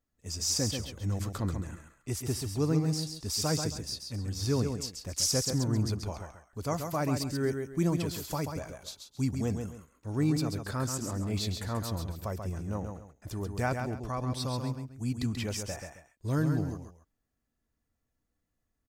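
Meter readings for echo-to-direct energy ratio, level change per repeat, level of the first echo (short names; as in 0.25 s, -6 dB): -5.5 dB, -11.0 dB, -6.0 dB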